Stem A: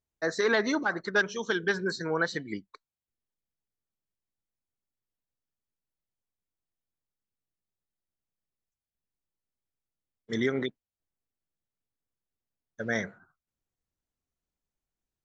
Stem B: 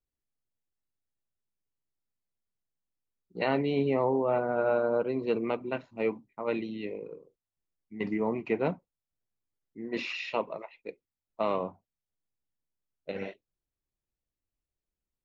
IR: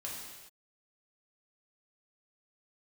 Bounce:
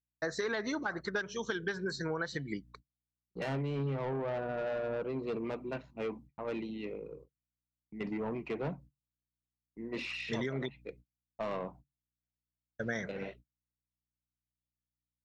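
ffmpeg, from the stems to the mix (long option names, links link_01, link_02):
-filter_complex "[0:a]volume=-1.5dB[link_01];[1:a]highpass=frequency=120:width=0.5412,highpass=frequency=120:width=1.3066,aeval=exprs='val(0)+0.00141*(sin(2*PI*60*n/s)+sin(2*PI*2*60*n/s)/2+sin(2*PI*3*60*n/s)/3+sin(2*PI*4*60*n/s)/4+sin(2*PI*5*60*n/s)/5)':channel_layout=same,asoftclip=type=tanh:threshold=-26.5dB,volume=-3dB[link_02];[link_01][link_02]amix=inputs=2:normalize=0,agate=range=-35dB:threshold=-53dB:ratio=16:detection=peak,equalizer=frequency=140:width=7.7:gain=13,acompressor=threshold=-31dB:ratio=10"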